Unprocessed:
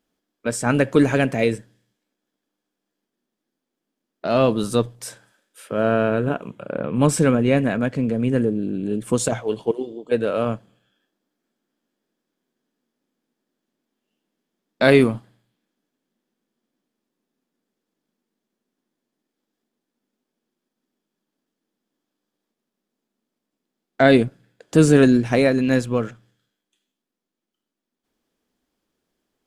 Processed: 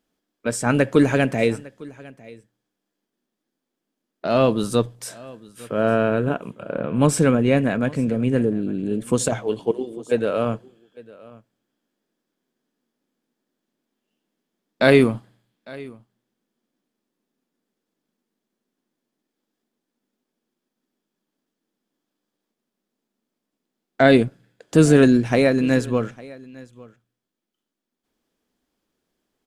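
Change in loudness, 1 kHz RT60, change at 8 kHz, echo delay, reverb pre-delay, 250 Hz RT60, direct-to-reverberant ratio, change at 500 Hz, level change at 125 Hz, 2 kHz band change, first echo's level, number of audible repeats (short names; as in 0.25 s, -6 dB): 0.0 dB, none, 0.0 dB, 0.854 s, none, none, none, 0.0 dB, 0.0 dB, 0.0 dB, -22.0 dB, 1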